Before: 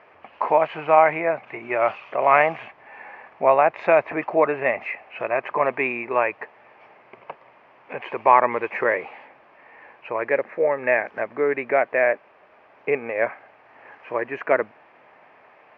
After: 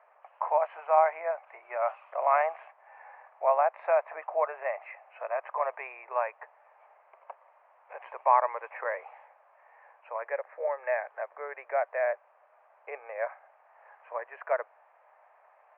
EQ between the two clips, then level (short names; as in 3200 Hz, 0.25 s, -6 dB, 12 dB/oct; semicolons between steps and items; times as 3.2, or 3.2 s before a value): steep high-pass 580 Hz 36 dB/oct; LPF 1300 Hz 12 dB/oct; -6.0 dB